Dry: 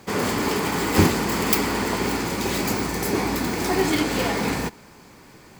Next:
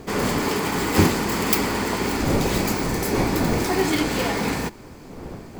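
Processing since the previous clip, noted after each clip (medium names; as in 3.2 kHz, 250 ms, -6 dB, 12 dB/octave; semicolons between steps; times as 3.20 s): wind noise 370 Hz -30 dBFS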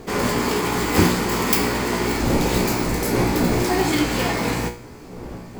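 feedback comb 60 Hz, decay 0.41 s, harmonics all, mix 80%; trim +8.5 dB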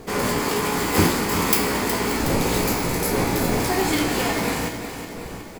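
peaking EQ 11 kHz +5.5 dB 0.52 oct; hum notches 60/120/180/240/300/360 Hz; feedback delay 367 ms, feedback 56%, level -10 dB; trim -1 dB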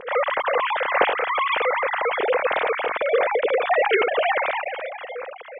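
formants replaced by sine waves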